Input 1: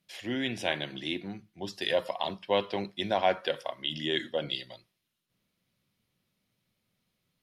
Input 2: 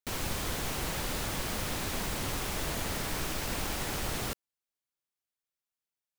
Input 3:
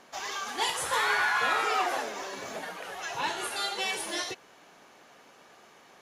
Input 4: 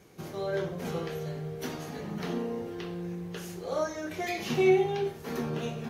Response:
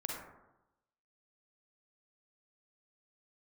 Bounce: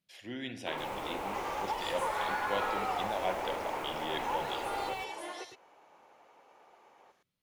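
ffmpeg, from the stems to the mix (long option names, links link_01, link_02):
-filter_complex "[0:a]volume=-11.5dB,asplit=2[link_01][link_02];[link_02]volume=-6dB[link_03];[1:a]adelay=600,volume=-1.5dB,asplit=3[link_04][link_05][link_06];[link_05]volume=-21.5dB[link_07];[link_06]volume=-17dB[link_08];[2:a]adelay=1100,volume=-7dB,asplit=2[link_09][link_10];[link_10]volume=-8.5dB[link_11];[link_04][link_09]amix=inputs=2:normalize=0,highpass=frequency=300:width=0.5412,highpass=frequency=300:width=1.3066,equalizer=frequency=520:width_type=q:width=4:gain=4,equalizer=frequency=870:width_type=q:width=4:gain=9,equalizer=frequency=1700:width_type=q:width=4:gain=-8,lowpass=frequency=2600:width=0.5412,lowpass=frequency=2600:width=1.3066,alimiter=level_in=0.5dB:limit=-24dB:level=0:latency=1:release=276,volume=-0.5dB,volume=0dB[link_12];[4:a]atrim=start_sample=2205[link_13];[link_03][link_07]amix=inputs=2:normalize=0[link_14];[link_14][link_13]afir=irnorm=-1:irlink=0[link_15];[link_08][link_11]amix=inputs=2:normalize=0,aecho=0:1:110:1[link_16];[link_01][link_12][link_15][link_16]amix=inputs=4:normalize=0"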